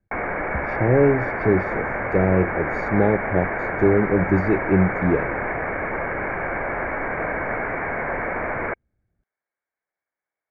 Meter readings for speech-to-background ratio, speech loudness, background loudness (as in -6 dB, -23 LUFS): 4.5 dB, -21.5 LUFS, -26.0 LUFS